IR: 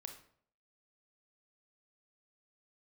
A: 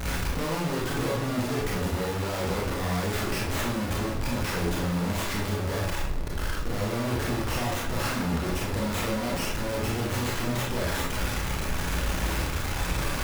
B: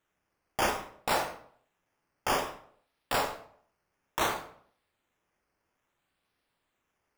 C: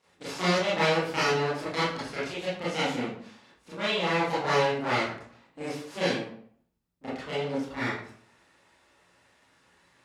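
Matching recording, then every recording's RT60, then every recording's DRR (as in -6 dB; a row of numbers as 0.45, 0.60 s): B; 0.60, 0.60, 0.60 s; -3.5, 4.5, -11.0 dB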